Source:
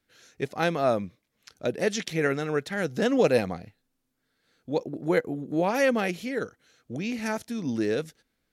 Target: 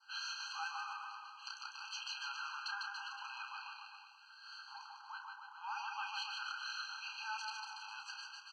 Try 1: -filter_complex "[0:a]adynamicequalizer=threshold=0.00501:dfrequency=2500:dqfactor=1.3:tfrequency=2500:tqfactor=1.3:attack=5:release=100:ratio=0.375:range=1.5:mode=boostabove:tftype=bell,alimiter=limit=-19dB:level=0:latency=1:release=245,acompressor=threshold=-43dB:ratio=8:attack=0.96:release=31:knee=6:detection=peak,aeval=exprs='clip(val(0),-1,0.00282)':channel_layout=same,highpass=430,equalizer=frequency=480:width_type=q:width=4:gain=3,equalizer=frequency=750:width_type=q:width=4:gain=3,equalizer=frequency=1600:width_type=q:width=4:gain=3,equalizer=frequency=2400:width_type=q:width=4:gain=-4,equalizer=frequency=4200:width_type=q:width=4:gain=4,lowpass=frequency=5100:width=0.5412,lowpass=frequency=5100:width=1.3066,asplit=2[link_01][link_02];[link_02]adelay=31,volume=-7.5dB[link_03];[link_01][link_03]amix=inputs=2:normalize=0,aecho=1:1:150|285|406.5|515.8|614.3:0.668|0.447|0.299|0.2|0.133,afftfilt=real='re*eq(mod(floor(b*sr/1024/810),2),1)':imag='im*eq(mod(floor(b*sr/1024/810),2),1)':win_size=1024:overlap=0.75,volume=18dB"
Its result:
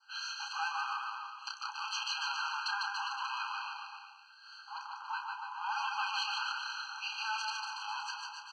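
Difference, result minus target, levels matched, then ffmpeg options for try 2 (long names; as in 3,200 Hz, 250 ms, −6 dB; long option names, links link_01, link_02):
downward compressor: peak gain reduction −9 dB
-filter_complex "[0:a]adynamicequalizer=threshold=0.00501:dfrequency=2500:dqfactor=1.3:tfrequency=2500:tqfactor=1.3:attack=5:release=100:ratio=0.375:range=1.5:mode=boostabove:tftype=bell,alimiter=limit=-19dB:level=0:latency=1:release=245,acompressor=threshold=-53.5dB:ratio=8:attack=0.96:release=31:knee=6:detection=peak,aeval=exprs='clip(val(0),-1,0.00282)':channel_layout=same,highpass=430,equalizer=frequency=480:width_type=q:width=4:gain=3,equalizer=frequency=750:width_type=q:width=4:gain=3,equalizer=frequency=1600:width_type=q:width=4:gain=3,equalizer=frequency=2400:width_type=q:width=4:gain=-4,equalizer=frequency=4200:width_type=q:width=4:gain=4,lowpass=frequency=5100:width=0.5412,lowpass=frequency=5100:width=1.3066,asplit=2[link_01][link_02];[link_02]adelay=31,volume=-7.5dB[link_03];[link_01][link_03]amix=inputs=2:normalize=0,aecho=1:1:150|285|406.5|515.8|614.3:0.668|0.447|0.299|0.2|0.133,afftfilt=real='re*eq(mod(floor(b*sr/1024/810),2),1)':imag='im*eq(mod(floor(b*sr/1024/810),2),1)':win_size=1024:overlap=0.75,volume=18dB"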